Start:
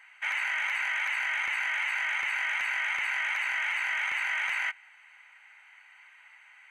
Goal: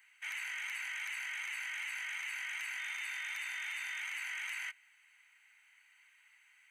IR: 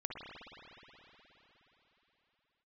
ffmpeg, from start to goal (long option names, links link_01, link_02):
-filter_complex "[0:a]asettb=1/sr,asplit=3[link_01][link_02][link_03];[link_01]atrim=end=2.794[link_04];[link_02]atrim=start=2.79:end=4.01,asetpts=PTS-STARTPTS,afade=type=in:duration=0.004:curve=qsin,afade=type=out:start_time=1.216:duration=0.004:curve=qsin,aeval=exprs='val(0)+0.00282*sin(2*PI*3600*n/s)':channel_layout=same[link_05];[link_03]atrim=start=4.006[link_06];[link_04][link_05]acrossfade=duration=0.004:curve1=hsin:curve2=qsin[link_07];[link_07][link_06]acrossfade=duration=0.004:curve1=qsin:curve2=hsin,aderivative"